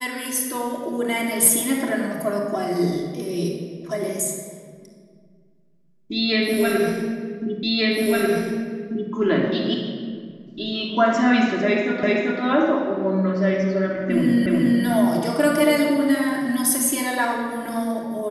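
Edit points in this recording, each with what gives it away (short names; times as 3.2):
7.63 repeat of the last 1.49 s
12.03 repeat of the last 0.39 s
14.46 repeat of the last 0.37 s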